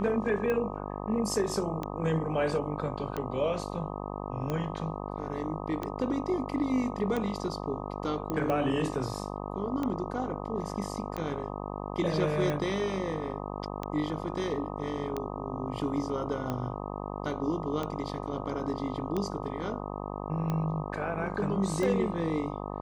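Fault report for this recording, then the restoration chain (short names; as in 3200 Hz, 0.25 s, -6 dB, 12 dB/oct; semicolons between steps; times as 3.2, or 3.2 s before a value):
buzz 50 Hz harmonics 25 -37 dBFS
tick 45 rpm -19 dBFS
8.3 pop -19 dBFS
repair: de-click; de-hum 50 Hz, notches 25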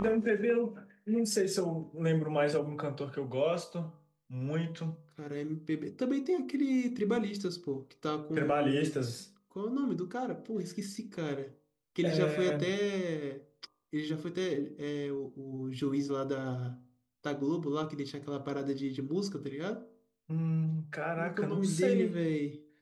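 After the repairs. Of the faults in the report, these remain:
none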